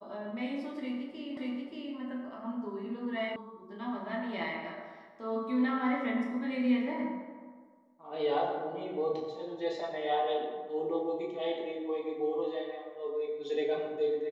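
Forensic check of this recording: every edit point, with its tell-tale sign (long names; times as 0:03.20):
0:01.37: the same again, the last 0.58 s
0:03.36: cut off before it has died away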